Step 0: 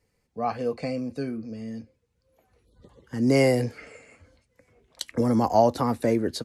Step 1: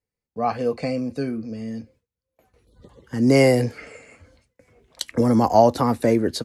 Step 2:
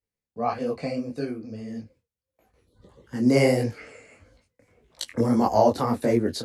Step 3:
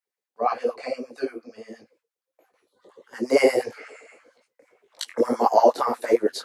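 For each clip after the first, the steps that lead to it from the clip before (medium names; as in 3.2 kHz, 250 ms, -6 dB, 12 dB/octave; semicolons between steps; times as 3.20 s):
gate with hold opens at -55 dBFS; trim +4.5 dB
detune thickener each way 56 cents
LFO high-pass sine 8.6 Hz 350–1500 Hz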